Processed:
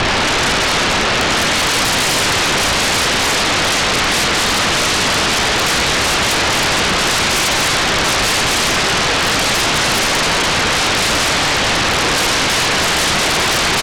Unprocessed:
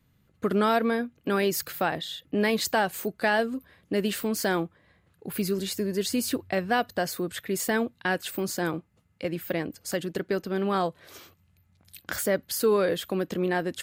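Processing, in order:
compressor on every frequency bin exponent 0.2
low shelf with overshoot 320 Hz +7 dB, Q 3
leveller curve on the samples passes 3
brickwall limiter −13 dBFS, peak gain reduction 16 dB
single-sideband voice off tune −190 Hz 210–3,600 Hz
echo with shifted repeats 215 ms, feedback 53%, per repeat −33 Hz, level −4.5 dB
four-comb reverb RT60 0.55 s, combs from 31 ms, DRR 2 dB
sine wavefolder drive 16 dB, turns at −10.5 dBFS
level −1.5 dB

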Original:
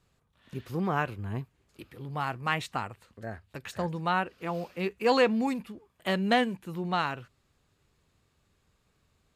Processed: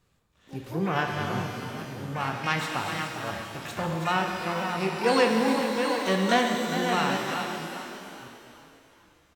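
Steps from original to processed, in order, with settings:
delay that plays each chunk backwards 552 ms, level −7 dB
pitch-shifted copies added +12 semitones −9 dB
on a send: echo with shifted repeats 405 ms, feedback 44%, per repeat +31 Hz, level −10 dB
on the sum: reverb with rising layers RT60 1.8 s, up +12 semitones, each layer −8 dB, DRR 3 dB

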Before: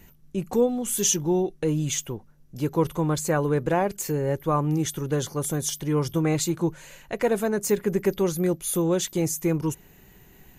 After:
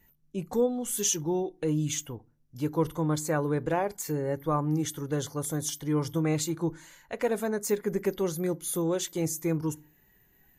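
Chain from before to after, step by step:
noise reduction from a noise print of the clip's start 10 dB
feedback delay network reverb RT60 0.31 s, low-frequency decay 1.55×, high-frequency decay 0.6×, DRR 18 dB
level −4.5 dB

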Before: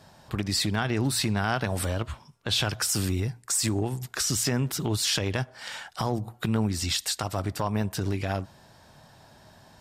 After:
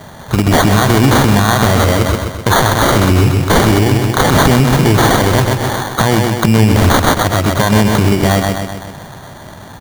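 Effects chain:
repeating echo 128 ms, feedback 56%, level −6 dB
decimation without filtering 17×
boost into a limiter +20 dB
level −1 dB

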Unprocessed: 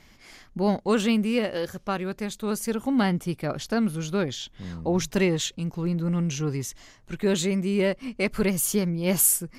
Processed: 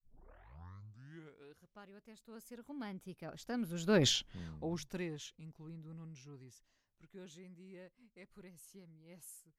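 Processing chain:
turntable start at the beginning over 1.95 s
source passing by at 0:04.08, 21 m/s, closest 1.1 metres
level +5.5 dB

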